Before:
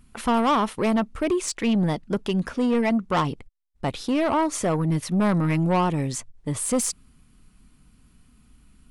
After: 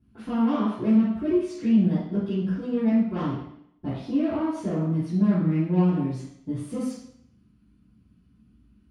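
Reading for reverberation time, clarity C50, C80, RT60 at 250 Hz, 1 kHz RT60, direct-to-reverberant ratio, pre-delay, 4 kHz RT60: 0.70 s, 0.5 dB, 4.5 dB, 0.75 s, 0.70 s, -13.5 dB, 3 ms, 0.70 s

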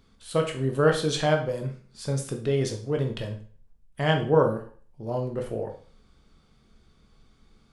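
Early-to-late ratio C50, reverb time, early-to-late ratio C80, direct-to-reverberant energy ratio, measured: 9.5 dB, 0.45 s, 14.0 dB, 3.0 dB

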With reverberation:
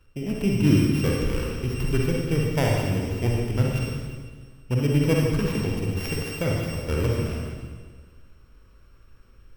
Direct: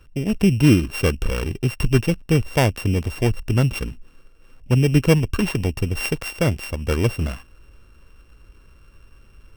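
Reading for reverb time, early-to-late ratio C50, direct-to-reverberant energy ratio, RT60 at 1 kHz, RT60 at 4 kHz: 1.6 s, -1.5 dB, -2.5 dB, 1.5 s, 1.5 s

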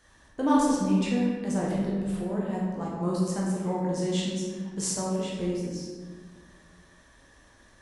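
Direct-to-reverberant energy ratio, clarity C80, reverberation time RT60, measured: -5.0 dB, 2.0 dB, 1.6 s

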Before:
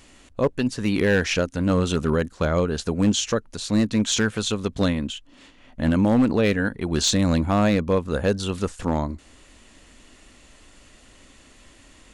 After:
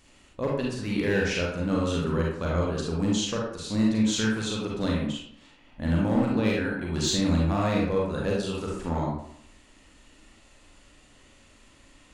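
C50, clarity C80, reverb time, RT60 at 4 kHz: 0.0 dB, 5.0 dB, 0.65 s, 0.40 s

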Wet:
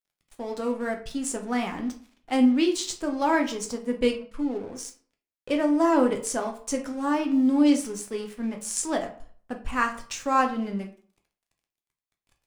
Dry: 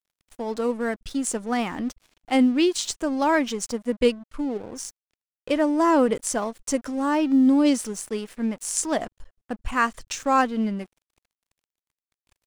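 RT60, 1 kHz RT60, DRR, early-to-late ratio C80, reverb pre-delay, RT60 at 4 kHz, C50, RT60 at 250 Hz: 0.50 s, 0.50 s, 3.0 dB, 16.0 dB, 7 ms, 0.30 s, 11.0 dB, 0.50 s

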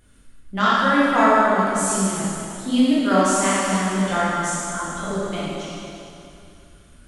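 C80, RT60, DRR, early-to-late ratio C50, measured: -2.0 dB, 2.8 s, -9.0 dB, -4.5 dB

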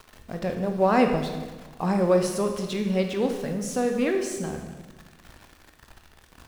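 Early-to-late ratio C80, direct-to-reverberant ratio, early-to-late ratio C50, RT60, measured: 7.5 dB, 4.0 dB, 6.0 dB, 1.3 s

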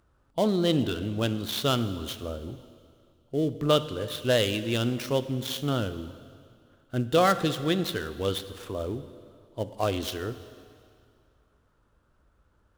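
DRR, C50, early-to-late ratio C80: 12.0 dB, 13.0 dB, 14.0 dB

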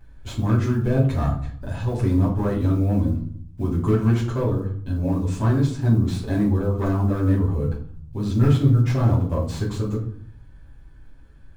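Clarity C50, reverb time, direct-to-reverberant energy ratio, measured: 8.0 dB, 0.60 s, -7.0 dB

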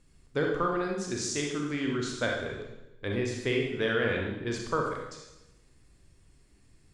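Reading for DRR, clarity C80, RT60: -0.5 dB, 5.0 dB, 0.95 s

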